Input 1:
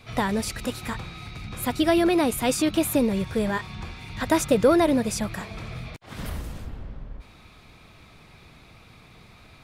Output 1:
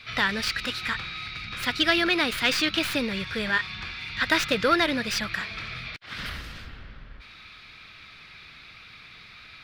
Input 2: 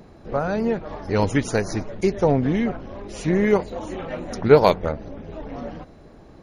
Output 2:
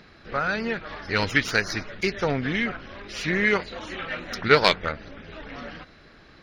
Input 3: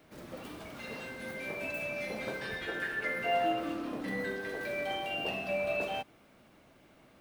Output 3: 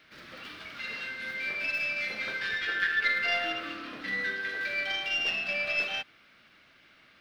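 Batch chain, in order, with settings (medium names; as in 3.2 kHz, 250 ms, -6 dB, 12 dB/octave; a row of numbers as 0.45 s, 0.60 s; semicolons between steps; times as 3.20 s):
tracing distortion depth 0.064 ms; high-order bell 2.6 kHz +15.5 dB 2.4 oct; trim -7 dB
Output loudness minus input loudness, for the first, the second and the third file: -1.5 LU, -2.5 LU, +5.5 LU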